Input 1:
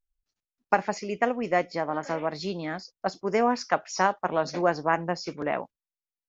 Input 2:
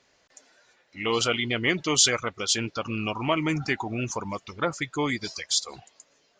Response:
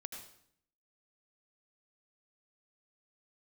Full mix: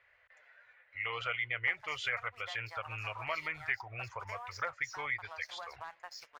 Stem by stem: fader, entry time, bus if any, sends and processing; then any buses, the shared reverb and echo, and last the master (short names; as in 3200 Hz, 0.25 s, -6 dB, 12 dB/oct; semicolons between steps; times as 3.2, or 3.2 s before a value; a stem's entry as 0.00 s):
-14.0 dB, 0.95 s, no send, HPF 850 Hz 24 dB/oct; sample leveller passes 2; compressor, threshold -26 dBFS, peak gain reduction 11 dB
-5.5 dB, 0.00 s, no send, EQ curve 110 Hz 0 dB, 210 Hz -28 dB, 340 Hz -19 dB, 520 Hz -2 dB, 870 Hz -2 dB, 2000 Hz +11 dB, 5700 Hz -23 dB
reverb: off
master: compressor 1.5:1, threshold -44 dBFS, peak gain reduction 10 dB